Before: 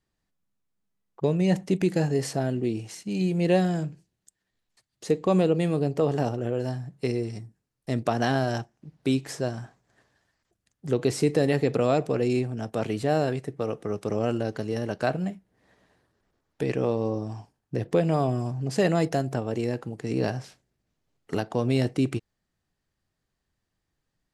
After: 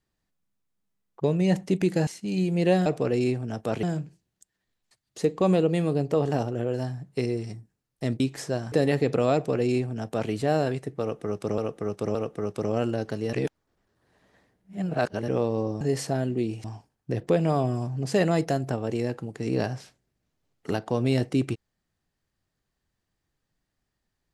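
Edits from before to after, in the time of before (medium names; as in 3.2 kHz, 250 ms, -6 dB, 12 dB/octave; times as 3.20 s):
2.07–2.90 s: move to 17.28 s
8.06–9.11 s: delete
9.63–11.33 s: delete
11.95–12.92 s: copy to 3.69 s
13.62–14.19 s: loop, 3 plays
14.80–16.75 s: reverse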